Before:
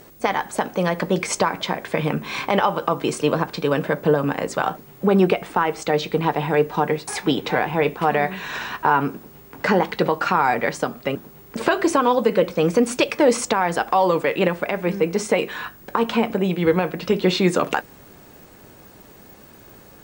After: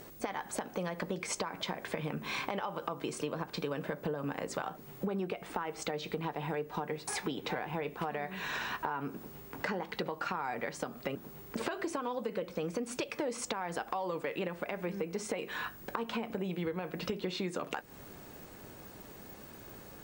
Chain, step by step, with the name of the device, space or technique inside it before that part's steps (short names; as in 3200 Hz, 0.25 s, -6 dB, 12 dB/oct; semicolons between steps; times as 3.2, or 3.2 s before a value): serial compression, peaks first (compressor, threshold -25 dBFS, peak gain reduction 13 dB; compressor 1.5:1, threshold -34 dBFS, peak gain reduction 5 dB); gain -4 dB